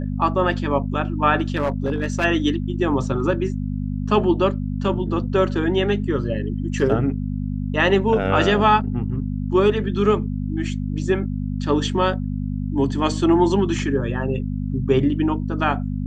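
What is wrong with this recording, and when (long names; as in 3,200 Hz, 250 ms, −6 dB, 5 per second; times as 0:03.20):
mains hum 50 Hz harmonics 5 −25 dBFS
0:01.56–0:02.25: clipping −16.5 dBFS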